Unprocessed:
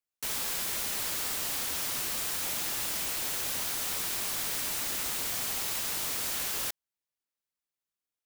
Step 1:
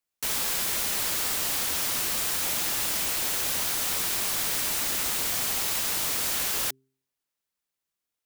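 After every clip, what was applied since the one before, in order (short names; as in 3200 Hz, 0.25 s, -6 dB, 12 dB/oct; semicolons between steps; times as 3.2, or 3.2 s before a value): de-hum 132.4 Hz, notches 3; gain +5 dB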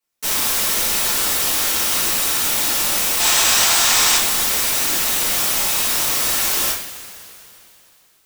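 spectral gain 3.2–4.16, 630–8600 Hz +7 dB; two-slope reverb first 0.45 s, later 3.1 s, from -18 dB, DRR -10 dB; gain -1.5 dB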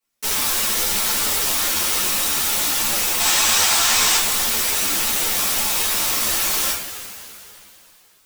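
in parallel at -2 dB: compressor, threshold -26 dBFS, peak gain reduction 13.5 dB; on the sum: ensemble effect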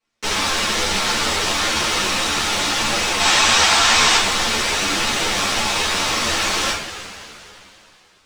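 air absorption 110 m; gain +7 dB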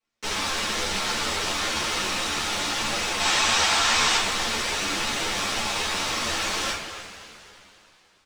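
speakerphone echo 0.27 s, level -12 dB; gain -7 dB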